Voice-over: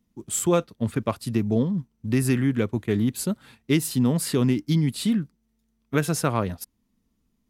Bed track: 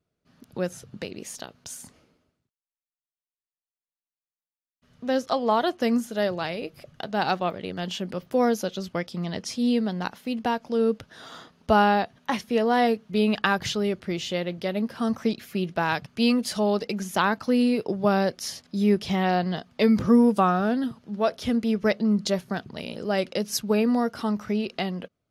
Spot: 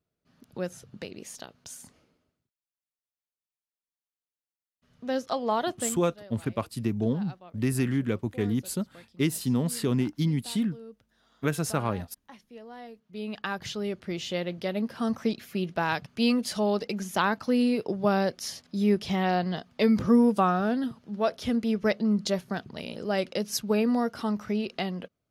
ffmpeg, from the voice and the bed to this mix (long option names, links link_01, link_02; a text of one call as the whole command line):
ffmpeg -i stem1.wav -i stem2.wav -filter_complex "[0:a]adelay=5500,volume=-4.5dB[link_01];[1:a]volume=16dB,afade=type=out:start_time=5.72:duration=0.28:silence=0.11885,afade=type=in:start_time=12.93:duration=1.46:silence=0.0944061[link_02];[link_01][link_02]amix=inputs=2:normalize=0" out.wav